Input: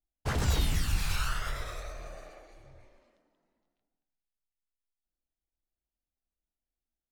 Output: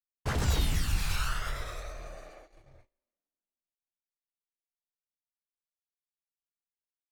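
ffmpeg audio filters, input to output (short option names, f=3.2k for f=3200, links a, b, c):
-af "agate=range=-28dB:threshold=-52dB:ratio=16:detection=peak"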